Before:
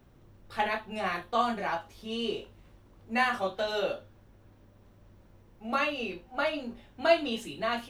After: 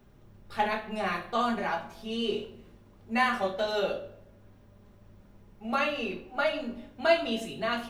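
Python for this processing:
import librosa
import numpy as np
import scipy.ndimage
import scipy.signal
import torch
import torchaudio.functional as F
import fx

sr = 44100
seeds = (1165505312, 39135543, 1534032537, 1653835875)

y = fx.room_shoebox(x, sr, seeds[0], volume_m3=2300.0, walls='furnished', distance_m=1.3)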